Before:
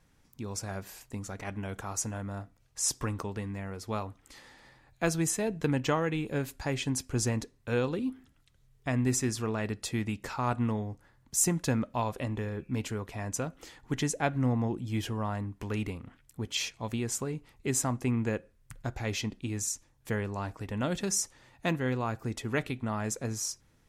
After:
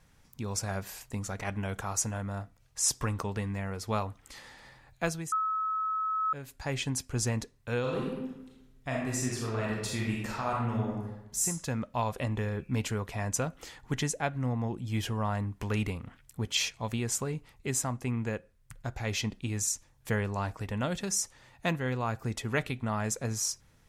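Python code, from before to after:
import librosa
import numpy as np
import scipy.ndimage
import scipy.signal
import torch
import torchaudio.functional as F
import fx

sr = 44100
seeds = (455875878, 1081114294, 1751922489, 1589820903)

y = fx.reverb_throw(x, sr, start_s=7.8, length_s=3.64, rt60_s=1.0, drr_db=-3.5)
y = fx.edit(y, sr, fx.bleep(start_s=5.32, length_s=1.01, hz=1290.0, db=-12.0), tone=tone)
y = fx.rider(y, sr, range_db=10, speed_s=0.5)
y = fx.peak_eq(y, sr, hz=310.0, db=-5.5, octaves=0.8)
y = F.gain(torch.from_numpy(y), -6.0).numpy()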